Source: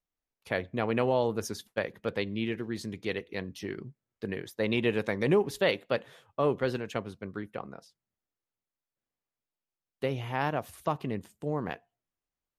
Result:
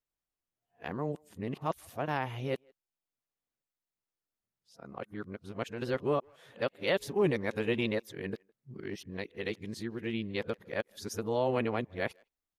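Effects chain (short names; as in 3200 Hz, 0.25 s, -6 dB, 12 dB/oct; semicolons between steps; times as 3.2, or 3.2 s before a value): whole clip reversed; speakerphone echo 0.16 s, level -29 dB; gain -3 dB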